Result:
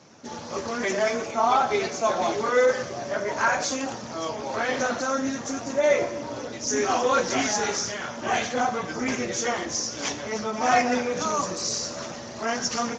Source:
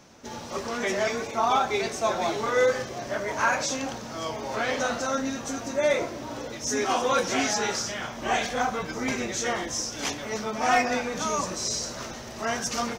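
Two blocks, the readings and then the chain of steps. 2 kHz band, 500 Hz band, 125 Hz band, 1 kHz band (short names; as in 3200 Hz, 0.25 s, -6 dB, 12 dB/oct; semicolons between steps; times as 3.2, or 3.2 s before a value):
+0.5 dB, +2.5 dB, 0.0 dB, +2.0 dB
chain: resonator 82 Hz, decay 1 s, harmonics all, mix 60%; gain +8.5 dB; Speex 13 kbps 16000 Hz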